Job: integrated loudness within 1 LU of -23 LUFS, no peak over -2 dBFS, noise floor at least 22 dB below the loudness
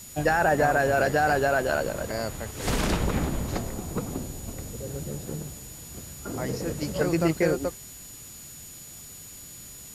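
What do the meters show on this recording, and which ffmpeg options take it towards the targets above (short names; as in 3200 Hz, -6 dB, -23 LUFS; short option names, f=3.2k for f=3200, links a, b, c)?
steady tone 6900 Hz; tone level -45 dBFS; noise floor -44 dBFS; noise floor target -49 dBFS; loudness -27.0 LUFS; peak -8.0 dBFS; loudness target -23.0 LUFS
-> -af "bandreject=f=6.9k:w=30"
-af "afftdn=nr=6:nf=-44"
-af "volume=4dB"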